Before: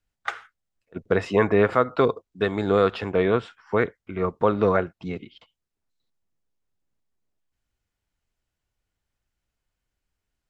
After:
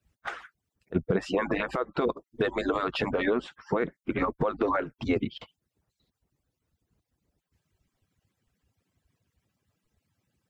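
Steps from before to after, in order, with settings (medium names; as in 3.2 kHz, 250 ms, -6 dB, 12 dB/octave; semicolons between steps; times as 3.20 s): harmonic-percussive separation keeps percussive; compression 3:1, threshold -33 dBFS, peak gain reduction 13.5 dB; peak limiter -27 dBFS, peak gain reduction 11 dB; bass shelf 410 Hz +9 dB; trim +8 dB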